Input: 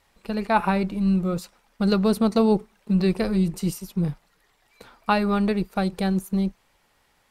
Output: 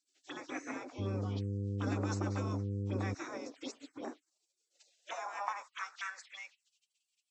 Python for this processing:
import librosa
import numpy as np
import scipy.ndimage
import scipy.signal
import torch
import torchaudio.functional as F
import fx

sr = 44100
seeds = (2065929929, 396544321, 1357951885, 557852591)

y = fx.freq_compress(x, sr, knee_hz=2200.0, ratio=1.5)
y = fx.spec_gate(y, sr, threshold_db=-25, keep='weak')
y = fx.env_phaser(y, sr, low_hz=160.0, high_hz=3200.0, full_db=-41.5)
y = fx.filter_sweep_highpass(y, sr, from_hz=280.0, to_hz=2700.0, start_s=4.23, end_s=6.6, q=5.0)
y = fx.dmg_buzz(y, sr, base_hz=100.0, harmonics=5, level_db=-37.0, tilt_db=-7, odd_only=False, at=(0.98, 3.13), fade=0.02)
y = y * 10.0 ** (1.0 / 20.0)